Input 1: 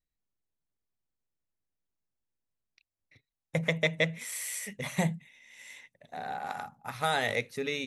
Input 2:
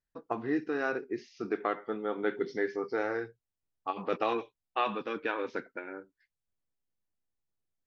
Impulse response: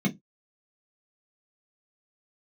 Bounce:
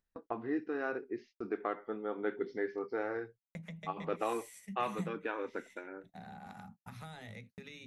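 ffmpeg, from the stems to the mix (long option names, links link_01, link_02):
-filter_complex "[0:a]acrossover=split=97|640[link_01][link_02][link_03];[link_01]acompressor=threshold=-57dB:ratio=4[link_04];[link_02]acompressor=threshold=-42dB:ratio=4[link_05];[link_03]acompressor=threshold=-39dB:ratio=4[link_06];[link_04][link_05][link_06]amix=inputs=3:normalize=0,asubboost=boost=3.5:cutoff=230,volume=-12.5dB,asplit=2[link_07][link_08];[link_08]volume=-20dB[link_09];[1:a]aemphasis=mode=reproduction:type=75kf,volume=-4dB[link_10];[2:a]atrim=start_sample=2205[link_11];[link_09][link_11]afir=irnorm=-1:irlink=0[link_12];[link_07][link_10][link_12]amix=inputs=3:normalize=0,agate=range=-57dB:threshold=-54dB:ratio=16:detection=peak,equalizer=frequency=150:width_type=o:width=0.27:gain=-8.5,acompressor=mode=upward:threshold=-43dB:ratio=2.5"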